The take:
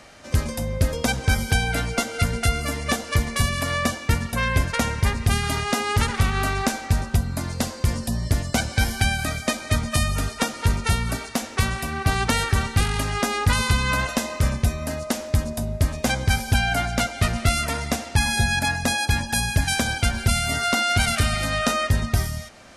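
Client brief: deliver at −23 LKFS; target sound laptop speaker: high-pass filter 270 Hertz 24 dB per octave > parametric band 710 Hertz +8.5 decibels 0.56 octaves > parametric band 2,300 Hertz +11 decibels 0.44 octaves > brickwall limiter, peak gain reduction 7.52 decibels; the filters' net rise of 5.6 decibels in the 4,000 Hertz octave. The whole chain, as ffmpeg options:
ffmpeg -i in.wav -af "highpass=frequency=270:width=0.5412,highpass=frequency=270:width=1.3066,equalizer=frequency=710:width_type=o:width=0.56:gain=8.5,equalizer=frequency=2300:width_type=o:width=0.44:gain=11,equalizer=frequency=4000:width_type=o:gain=5,volume=-1.5dB,alimiter=limit=-11.5dB:level=0:latency=1" out.wav

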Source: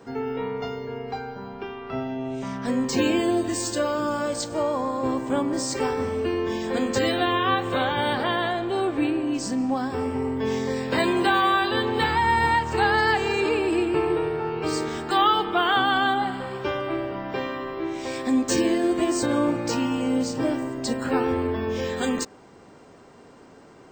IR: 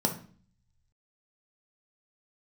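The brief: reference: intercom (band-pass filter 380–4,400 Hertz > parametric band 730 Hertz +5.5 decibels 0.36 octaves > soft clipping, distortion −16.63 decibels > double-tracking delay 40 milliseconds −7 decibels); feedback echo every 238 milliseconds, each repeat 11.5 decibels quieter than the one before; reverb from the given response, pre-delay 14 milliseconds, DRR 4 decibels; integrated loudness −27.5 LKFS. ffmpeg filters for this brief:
-filter_complex "[0:a]aecho=1:1:238|476|714:0.266|0.0718|0.0194,asplit=2[link_01][link_02];[1:a]atrim=start_sample=2205,adelay=14[link_03];[link_02][link_03]afir=irnorm=-1:irlink=0,volume=-12.5dB[link_04];[link_01][link_04]amix=inputs=2:normalize=0,highpass=380,lowpass=4400,equalizer=frequency=730:width_type=o:width=0.36:gain=5.5,asoftclip=threshold=-11.5dB,asplit=2[link_05][link_06];[link_06]adelay=40,volume=-7dB[link_07];[link_05][link_07]amix=inputs=2:normalize=0,volume=-5.5dB"

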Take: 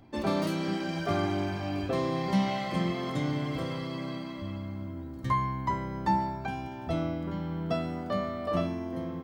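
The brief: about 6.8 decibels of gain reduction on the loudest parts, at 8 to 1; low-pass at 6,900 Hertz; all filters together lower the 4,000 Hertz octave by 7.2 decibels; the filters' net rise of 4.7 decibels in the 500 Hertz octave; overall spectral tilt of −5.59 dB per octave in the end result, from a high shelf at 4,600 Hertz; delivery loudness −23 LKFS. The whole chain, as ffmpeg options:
ffmpeg -i in.wav -af "lowpass=6900,equalizer=frequency=500:width_type=o:gain=6.5,equalizer=frequency=4000:width_type=o:gain=-5.5,highshelf=frequency=4600:gain=-8,acompressor=threshold=-28dB:ratio=8,volume=10.5dB" out.wav

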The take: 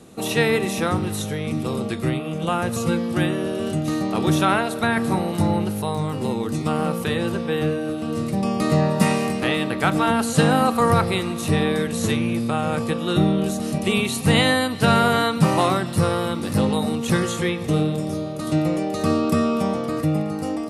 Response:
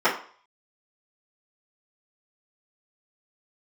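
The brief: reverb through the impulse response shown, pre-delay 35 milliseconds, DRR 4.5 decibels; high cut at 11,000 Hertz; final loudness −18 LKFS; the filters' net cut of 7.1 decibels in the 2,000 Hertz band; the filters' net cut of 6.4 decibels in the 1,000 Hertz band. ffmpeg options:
-filter_complex "[0:a]lowpass=11000,equalizer=frequency=1000:width_type=o:gain=-7,equalizer=frequency=2000:width_type=o:gain=-7,asplit=2[link_01][link_02];[1:a]atrim=start_sample=2205,adelay=35[link_03];[link_02][link_03]afir=irnorm=-1:irlink=0,volume=-23dB[link_04];[link_01][link_04]amix=inputs=2:normalize=0,volume=4.5dB"

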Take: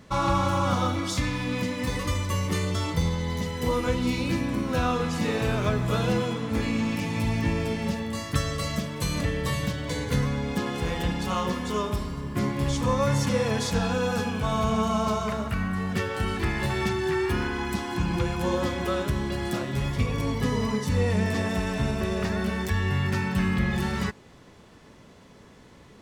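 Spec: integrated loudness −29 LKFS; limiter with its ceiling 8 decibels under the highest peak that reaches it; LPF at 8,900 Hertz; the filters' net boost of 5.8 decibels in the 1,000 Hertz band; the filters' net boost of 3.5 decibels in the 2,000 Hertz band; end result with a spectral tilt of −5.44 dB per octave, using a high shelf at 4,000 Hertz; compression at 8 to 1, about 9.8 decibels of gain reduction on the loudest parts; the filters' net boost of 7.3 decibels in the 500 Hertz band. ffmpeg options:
ffmpeg -i in.wav -af "lowpass=8900,equalizer=frequency=500:width_type=o:gain=7.5,equalizer=frequency=1000:width_type=o:gain=4.5,equalizer=frequency=2000:width_type=o:gain=4,highshelf=frequency=4000:gain=-7,acompressor=threshold=-24dB:ratio=8,volume=2dB,alimiter=limit=-20dB:level=0:latency=1" out.wav

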